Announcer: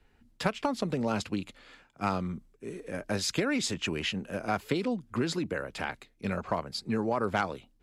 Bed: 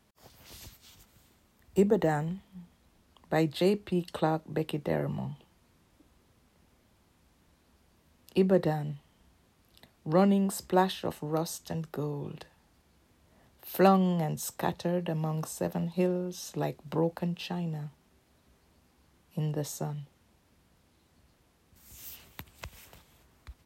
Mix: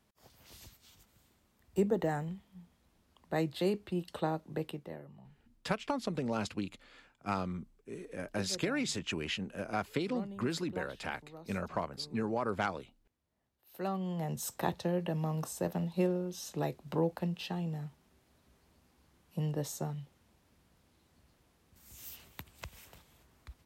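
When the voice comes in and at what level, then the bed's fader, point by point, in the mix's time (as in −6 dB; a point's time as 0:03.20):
5.25 s, −4.5 dB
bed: 0:04.66 −5.5 dB
0:05.07 −20.5 dB
0:13.62 −20.5 dB
0:14.37 −2.5 dB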